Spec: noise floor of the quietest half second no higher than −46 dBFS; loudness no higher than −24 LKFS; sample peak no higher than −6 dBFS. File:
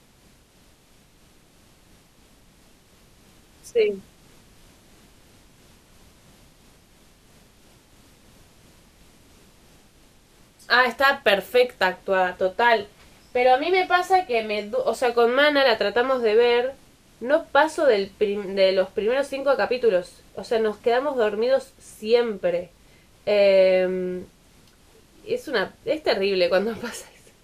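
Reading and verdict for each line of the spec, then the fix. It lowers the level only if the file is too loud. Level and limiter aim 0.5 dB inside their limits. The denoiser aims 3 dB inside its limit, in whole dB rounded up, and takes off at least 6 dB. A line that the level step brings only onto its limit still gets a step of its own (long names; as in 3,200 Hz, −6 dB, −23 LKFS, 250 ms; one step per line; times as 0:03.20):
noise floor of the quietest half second −56 dBFS: in spec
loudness −21.5 LKFS: out of spec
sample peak −4.5 dBFS: out of spec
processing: level −3 dB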